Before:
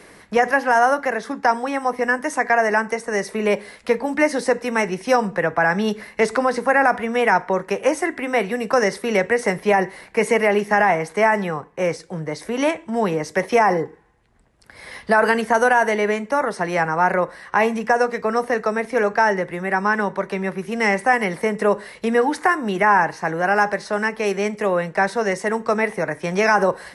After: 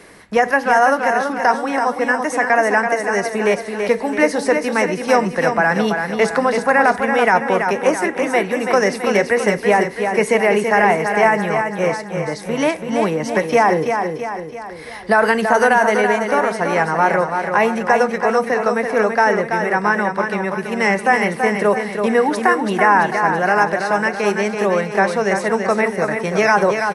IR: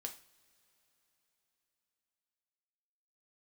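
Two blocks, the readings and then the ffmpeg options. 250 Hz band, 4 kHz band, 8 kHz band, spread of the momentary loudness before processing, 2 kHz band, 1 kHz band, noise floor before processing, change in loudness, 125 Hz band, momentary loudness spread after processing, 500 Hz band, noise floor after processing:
+3.5 dB, +3.5 dB, +3.5 dB, 7 LU, +3.0 dB, +3.5 dB, −48 dBFS, +3.0 dB, +3.0 dB, 5 LU, +3.5 dB, −31 dBFS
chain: -af "aecho=1:1:332|664|996|1328|1660|1992:0.501|0.256|0.13|0.0665|0.0339|0.0173,volume=2dB"

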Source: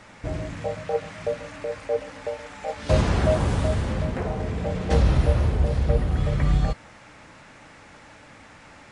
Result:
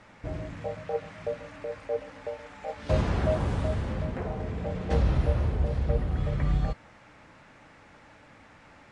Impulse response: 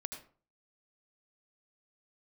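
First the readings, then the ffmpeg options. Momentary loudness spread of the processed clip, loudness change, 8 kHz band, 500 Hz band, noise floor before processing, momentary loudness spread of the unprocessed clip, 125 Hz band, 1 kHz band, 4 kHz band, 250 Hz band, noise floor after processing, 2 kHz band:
13 LU, −5.0 dB, below −10 dB, −5.0 dB, −49 dBFS, 12 LU, −5.0 dB, −5.5 dB, −8.5 dB, −5.0 dB, −54 dBFS, −6.5 dB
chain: -af "aemphasis=mode=reproduction:type=cd,volume=-5.5dB"

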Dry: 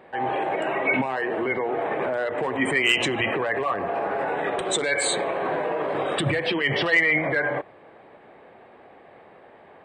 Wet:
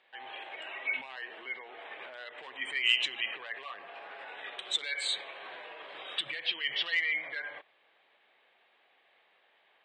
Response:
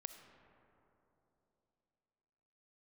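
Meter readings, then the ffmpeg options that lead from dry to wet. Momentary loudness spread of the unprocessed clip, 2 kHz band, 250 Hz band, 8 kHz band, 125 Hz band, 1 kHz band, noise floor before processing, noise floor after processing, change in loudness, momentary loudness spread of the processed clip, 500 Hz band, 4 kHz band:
7 LU, −10.0 dB, −30.0 dB, −15.5 dB, below −35 dB, −19.5 dB, −50 dBFS, −68 dBFS, −9.5 dB, 17 LU, −25.0 dB, −2.5 dB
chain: -af "bandpass=frequency=3400:width_type=q:width=2.4:csg=0,volume=-1dB"

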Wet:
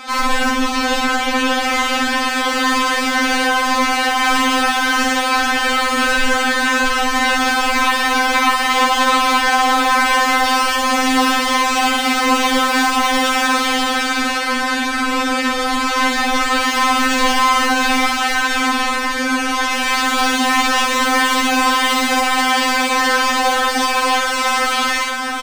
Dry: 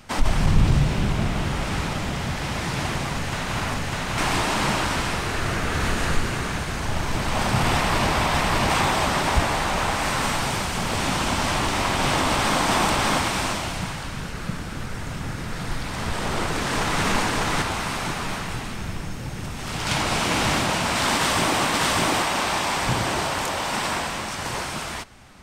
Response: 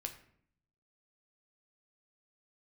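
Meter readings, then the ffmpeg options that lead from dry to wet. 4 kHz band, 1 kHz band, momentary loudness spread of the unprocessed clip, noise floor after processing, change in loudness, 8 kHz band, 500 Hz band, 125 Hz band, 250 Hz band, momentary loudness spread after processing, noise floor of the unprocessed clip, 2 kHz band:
+9.0 dB, +10.0 dB, 11 LU, −19 dBFS, +8.5 dB, +6.5 dB, +5.5 dB, below −20 dB, +7.5 dB, 4 LU, −32 dBFS, +11.0 dB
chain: -filter_complex "[0:a]asplit=2[link_01][link_02];[link_02]highpass=frequency=720:poles=1,volume=33dB,asoftclip=type=tanh:threshold=-6.5dB[link_03];[link_01][link_03]amix=inputs=2:normalize=0,lowpass=frequency=2900:poles=1,volume=-6dB,aecho=1:1:656:0.473,asplit=2[link_04][link_05];[1:a]atrim=start_sample=2205,adelay=57[link_06];[link_05][link_06]afir=irnorm=-1:irlink=0,volume=3.5dB[link_07];[link_04][link_07]amix=inputs=2:normalize=0,afftfilt=real='re*3.46*eq(mod(b,12),0)':imag='im*3.46*eq(mod(b,12),0)':win_size=2048:overlap=0.75,volume=-3.5dB"

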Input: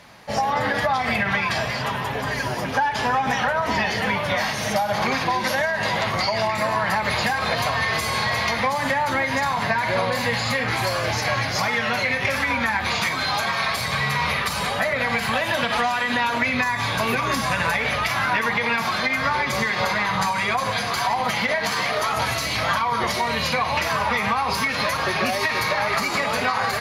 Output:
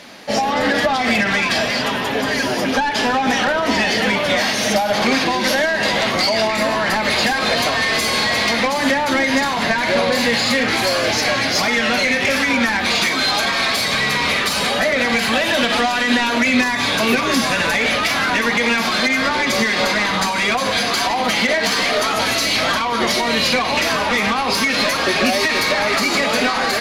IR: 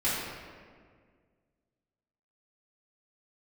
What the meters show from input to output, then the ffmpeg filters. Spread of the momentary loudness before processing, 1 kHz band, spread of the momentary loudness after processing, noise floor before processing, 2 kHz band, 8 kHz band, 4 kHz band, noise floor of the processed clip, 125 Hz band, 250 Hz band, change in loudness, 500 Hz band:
2 LU, +2.0 dB, 2 LU, −26 dBFS, +5.0 dB, +8.0 dB, +8.5 dB, −20 dBFS, −1.5 dB, +9.0 dB, +5.5 dB, +6.0 dB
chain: -filter_complex "[0:a]asplit=2[link_01][link_02];[link_02]highpass=frequency=720:poles=1,volume=15dB,asoftclip=type=tanh:threshold=-8dB[link_03];[link_01][link_03]amix=inputs=2:normalize=0,lowpass=frequency=4900:poles=1,volume=-6dB,equalizer=frequency=125:width_type=o:width=1:gain=-7,equalizer=frequency=250:width_type=o:width=1:gain=9,equalizer=frequency=1000:width_type=o:width=1:gain=-9,equalizer=frequency=2000:width_type=o:width=1:gain=-4,volume=4dB"

